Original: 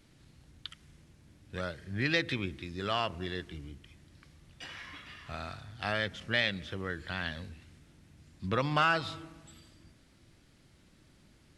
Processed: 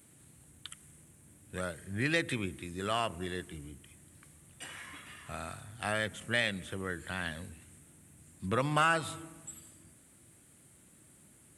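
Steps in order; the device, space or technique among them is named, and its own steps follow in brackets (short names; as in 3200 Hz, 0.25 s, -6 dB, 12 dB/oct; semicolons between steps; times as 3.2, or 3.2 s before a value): budget condenser microphone (HPF 86 Hz; resonant high shelf 6700 Hz +11 dB, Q 3)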